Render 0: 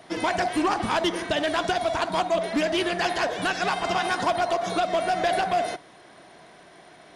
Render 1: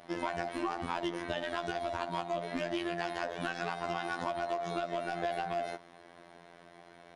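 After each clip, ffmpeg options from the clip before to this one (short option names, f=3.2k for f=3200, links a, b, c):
-af "highshelf=f=3.8k:g=-8,afftfilt=real='hypot(re,im)*cos(PI*b)':imag='0':win_size=2048:overlap=0.75,acompressor=threshold=-30dB:ratio=3,volume=-1.5dB"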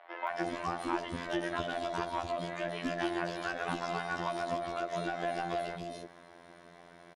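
-filter_complex "[0:a]acrossover=split=540|2900[a][b][c];[c]adelay=270[d];[a]adelay=300[e];[e][b][d]amix=inputs=3:normalize=0,volume=2dB"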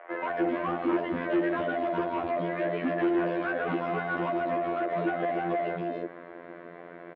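-af "volume=34.5dB,asoftclip=hard,volume=-34.5dB,highpass=160,equalizer=f=320:t=q:w=4:g=6,equalizer=f=490:t=q:w=4:g=7,equalizer=f=850:t=q:w=4:g=-6,lowpass=f=2.3k:w=0.5412,lowpass=f=2.3k:w=1.3066,volume=9dB"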